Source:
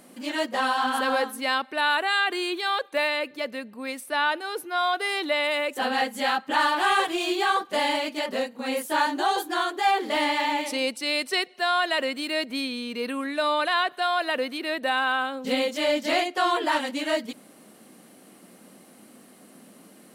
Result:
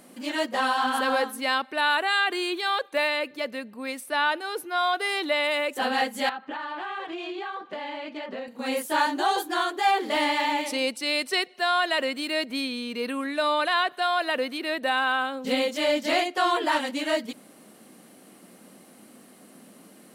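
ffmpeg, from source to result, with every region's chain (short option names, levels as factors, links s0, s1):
-filter_complex "[0:a]asettb=1/sr,asplit=3[s0][s1][s2];[s0]atrim=end=6.294[s3];[s1]atrim=start=6.29:end=8.48,asetpts=PTS-STARTPTS,afade=t=in:d=0.004:c=qsin,afade=t=out:st=2.186:d=0.004:c=qsin,highpass=140,lowpass=2900,acompressor=threshold=0.0282:ratio=6:attack=3.2:release=140:knee=1:detection=peak[s4];[s2]atrim=start=8.476[s5];[s3][s4]acrossfade=d=0.004:c1=hsin:c2=qsin[s6];[s6][s5]acrossfade=d=0.004:c1=qsin:c2=hsin"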